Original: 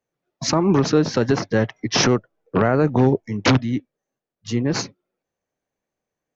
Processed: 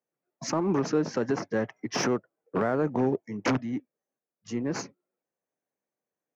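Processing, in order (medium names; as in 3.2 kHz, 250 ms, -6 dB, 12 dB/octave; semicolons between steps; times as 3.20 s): high-pass 180 Hz 12 dB/octave; peaking EQ 3.8 kHz -12.5 dB 0.8 oct; in parallel at -11 dB: hard clipper -23 dBFS, distortion -5 dB; on the sum: trim -8.5 dB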